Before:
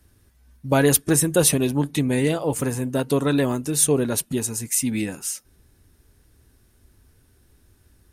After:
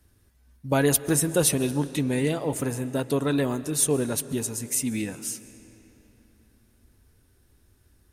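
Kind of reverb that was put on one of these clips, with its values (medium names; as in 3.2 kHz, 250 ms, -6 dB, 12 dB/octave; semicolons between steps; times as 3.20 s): algorithmic reverb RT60 3.7 s, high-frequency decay 0.75×, pre-delay 95 ms, DRR 15 dB; trim -4 dB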